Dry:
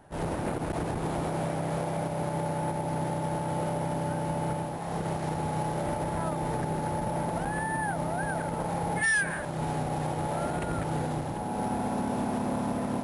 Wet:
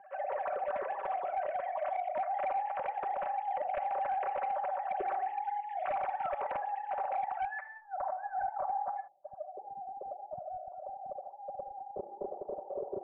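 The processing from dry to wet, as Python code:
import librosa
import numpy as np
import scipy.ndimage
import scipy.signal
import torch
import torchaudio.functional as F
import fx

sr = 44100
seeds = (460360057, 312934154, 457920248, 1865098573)

y = fx.sine_speech(x, sr)
y = fx.highpass(y, sr, hz=310.0, slope=6)
y = fx.dynamic_eq(y, sr, hz=1400.0, q=0.8, threshold_db=-41.0, ratio=4.0, max_db=-4)
y = fx.over_compress(y, sr, threshold_db=-37.0, ratio=-0.5)
y = y + 0.57 * np.pad(y, (int(5.3 * sr / 1000.0), 0))[:len(y)]
y = fx.room_shoebox(y, sr, seeds[0], volume_m3=2000.0, walls='furnished', distance_m=1.2)
y = 10.0 ** (-27.5 / 20.0) * (np.abs((y / 10.0 ** (-27.5 / 20.0) + 3.0) % 4.0 - 2.0) - 1.0)
y = fx.steep_lowpass(y, sr, hz=fx.steps((0.0, 2600.0), (7.8, 1400.0), (9.07, 640.0)), slope=36)
y = fx.doppler_dist(y, sr, depth_ms=0.13)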